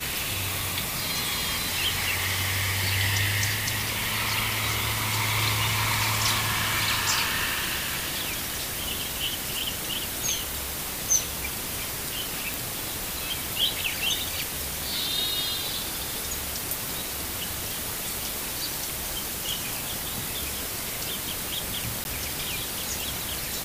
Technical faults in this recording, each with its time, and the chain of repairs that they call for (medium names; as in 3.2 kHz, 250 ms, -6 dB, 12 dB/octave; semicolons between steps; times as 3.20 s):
crackle 55 per s -33 dBFS
12.54 s: pop
22.04–22.05 s: dropout 11 ms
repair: de-click; interpolate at 22.04 s, 11 ms